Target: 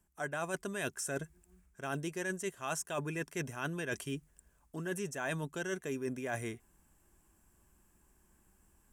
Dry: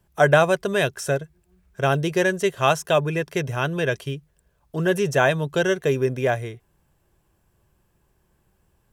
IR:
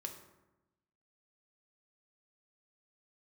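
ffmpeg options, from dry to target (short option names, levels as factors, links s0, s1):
-af "equalizer=f=125:t=o:w=1:g=-11,equalizer=f=250:t=o:w=1:g=6,equalizer=f=500:t=o:w=1:g=-9,equalizer=f=4000:t=o:w=1:g=-8,equalizer=f=8000:t=o:w=1:g=9,areverse,acompressor=threshold=0.0224:ratio=10,areverse,volume=0.891"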